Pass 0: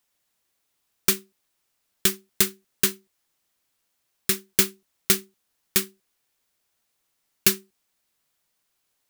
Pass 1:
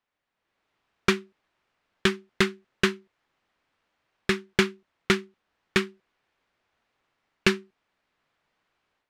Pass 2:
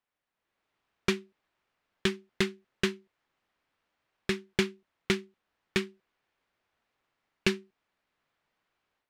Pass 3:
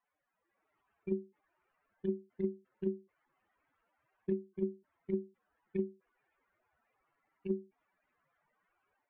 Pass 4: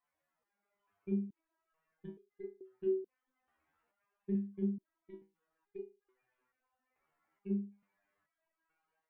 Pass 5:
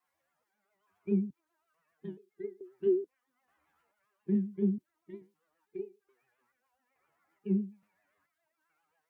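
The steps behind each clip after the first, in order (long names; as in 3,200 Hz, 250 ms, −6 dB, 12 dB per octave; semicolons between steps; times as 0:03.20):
low-pass filter 2,200 Hz 12 dB per octave; low-shelf EQ 450 Hz −3.5 dB; automatic gain control gain up to 9.5 dB; level −1 dB
dynamic equaliser 1,300 Hz, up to −7 dB, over −41 dBFS, Q 1.5; level −4.5 dB
expanding power law on the bin magnitudes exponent 3.2; compressor whose output falls as the input rises −29 dBFS, ratio −0.5; level −1.5 dB
step-sequenced resonator 2.3 Hz 79–410 Hz; level +7 dB
spectral magnitudes quantised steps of 15 dB; pitch vibrato 7.4 Hz 91 cents; high-pass filter 63 Hz; level +6 dB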